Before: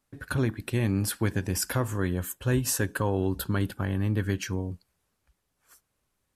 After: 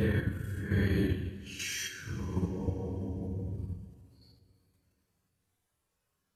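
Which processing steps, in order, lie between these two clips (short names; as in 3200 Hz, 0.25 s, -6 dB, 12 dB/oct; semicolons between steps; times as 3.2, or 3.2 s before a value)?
Paulstretch 6.7×, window 0.05 s, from 4.18; level quantiser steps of 9 dB; two-slope reverb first 0.3 s, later 3.1 s, from -18 dB, DRR 5.5 dB; gain -1.5 dB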